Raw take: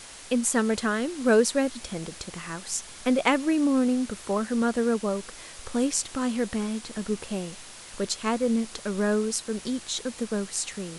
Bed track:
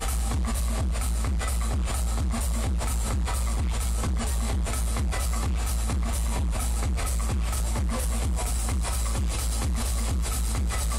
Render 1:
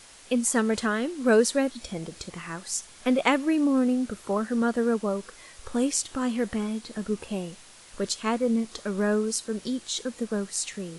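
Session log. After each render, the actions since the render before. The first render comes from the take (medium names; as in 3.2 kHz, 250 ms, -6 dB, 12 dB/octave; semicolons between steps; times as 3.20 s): noise print and reduce 6 dB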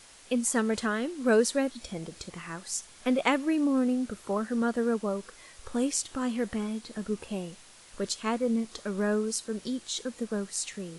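trim -3 dB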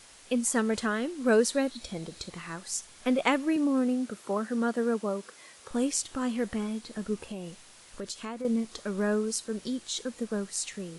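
1.51–2.55 s: peaking EQ 4 kHz +7.5 dB 0.2 oct; 3.56–5.71 s: high-pass 160 Hz; 7.17–8.45 s: compression 5:1, threshold -33 dBFS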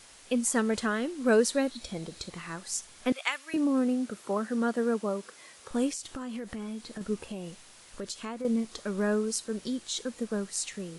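3.12–3.54 s: high-pass 1.5 kHz; 5.89–7.01 s: compression 10:1, threshold -33 dBFS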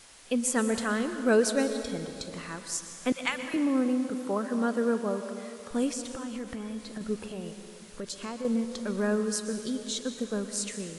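plate-style reverb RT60 2.4 s, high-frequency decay 0.65×, pre-delay 105 ms, DRR 8 dB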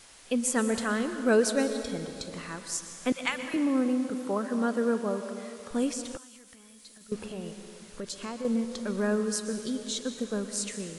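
6.17–7.12 s: pre-emphasis filter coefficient 0.9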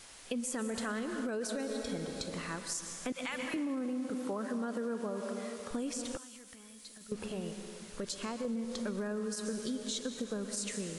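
peak limiter -22.5 dBFS, peak gain reduction 10.5 dB; compression, threshold -33 dBFS, peak gain reduction 7 dB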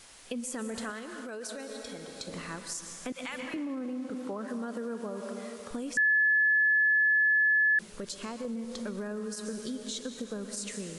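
0.90–2.27 s: bass shelf 370 Hz -10 dB; 3.40–4.48 s: treble shelf 8.6 kHz -11 dB; 5.97–7.79 s: bleep 1.72 kHz -21 dBFS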